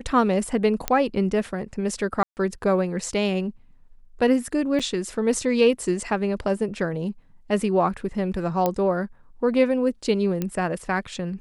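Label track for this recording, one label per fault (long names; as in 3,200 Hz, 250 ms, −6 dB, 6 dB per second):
0.880000	0.880000	click −6 dBFS
2.230000	2.370000	drop-out 139 ms
4.790000	4.800000	drop-out 6.6 ms
8.660000	8.660000	click −9 dBFS
10.420000	10.420000	click −13 dBFS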